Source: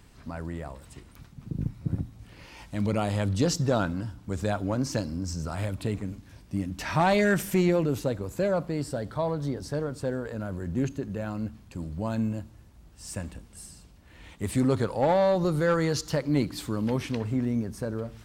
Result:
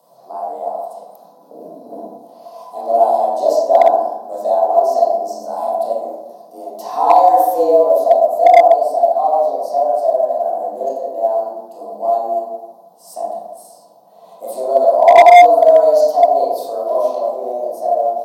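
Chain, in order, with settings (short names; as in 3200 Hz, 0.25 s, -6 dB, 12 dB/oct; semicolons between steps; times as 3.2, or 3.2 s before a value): de-hum 49.74 Hz, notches 4; frequency shift +130 Hz; EQ curve 100 Hz 0 dB, 170 Hz -24 dB, 440 Hz -19 dB, 690 Hz +13 dB, 1100 Hz -11 dB, 1600 Hz -25 dB, 2300 Hz -28 dB, 4200 Hz -7 dB, 7600 Hz -9 dB, 12000 Hz +6 dB; in parallel at -2 dB: compressor 5:1, threshold -35 dBFS, peak gain reduction 21.5 dB; on the sum: small resonant body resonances 470/1000 Hz, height 12 dB, ringing for 40 ms; dynamic EQ 320 Hz, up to +5 dB, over -31 dBFS, Q 1.1; reverb RT60 1.1 s, pre-delay 18 ms, DRR -7 dB; short-mantissa float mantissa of 6-bit; gain -1 dB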